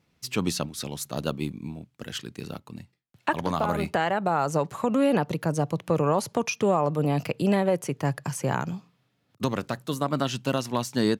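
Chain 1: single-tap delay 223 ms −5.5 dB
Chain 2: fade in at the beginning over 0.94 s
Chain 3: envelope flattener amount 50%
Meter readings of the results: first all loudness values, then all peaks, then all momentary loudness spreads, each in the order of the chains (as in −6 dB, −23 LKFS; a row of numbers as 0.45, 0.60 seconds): −26.5, −27.0, −25.0 LKFS; −9.0, −10.5, −7.5 dBFS; 13, 14, 8 LU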